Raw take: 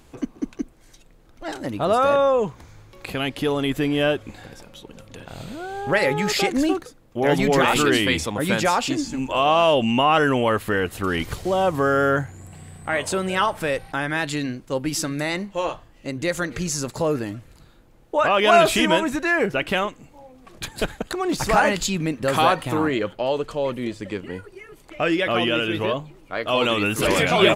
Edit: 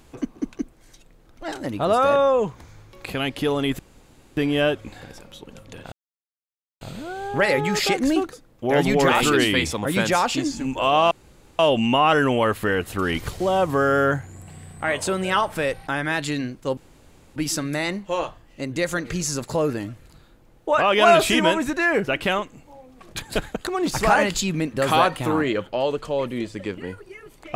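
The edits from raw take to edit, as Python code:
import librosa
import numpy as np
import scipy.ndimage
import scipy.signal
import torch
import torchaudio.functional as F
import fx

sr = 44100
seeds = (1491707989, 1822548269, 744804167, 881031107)

y = fx.edit(x, sr, fx.insert_room_tone(at_s=3.79, length_s=0.58),
    fx.insert_silence(at_s=5.34, length_s=0.89),
    fx.insert_room_tone(at_s=9.64, length_s=0.48),
    fx.insert_room_tone(at_s=14.82, length_s=0.59), tone=tone)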